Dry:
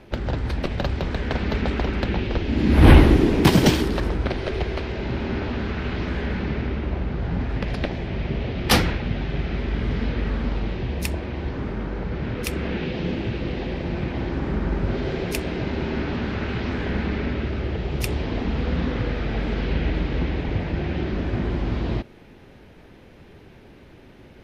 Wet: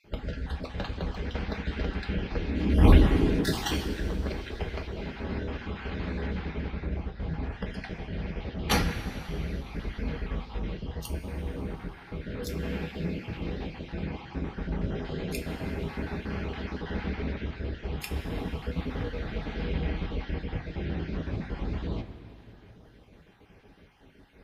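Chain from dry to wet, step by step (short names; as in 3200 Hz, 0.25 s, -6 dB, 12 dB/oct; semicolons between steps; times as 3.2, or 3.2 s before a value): random spectral dropouts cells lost 31%; two-slope reverb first 0.22 s, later 3.3 s, from -18 dB, DRR 2.5 dB; gain -8.5 dB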